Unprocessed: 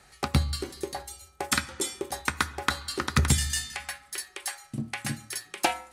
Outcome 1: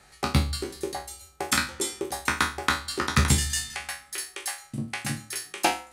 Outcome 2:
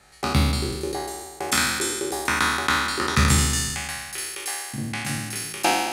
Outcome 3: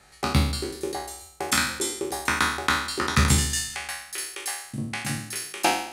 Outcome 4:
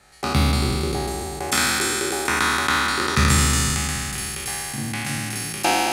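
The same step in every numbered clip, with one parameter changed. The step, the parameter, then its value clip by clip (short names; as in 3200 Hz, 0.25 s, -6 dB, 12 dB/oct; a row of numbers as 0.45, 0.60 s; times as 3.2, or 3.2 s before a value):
spectral trails, RT60: 0.33, 1.43, 0.68, 3.16 s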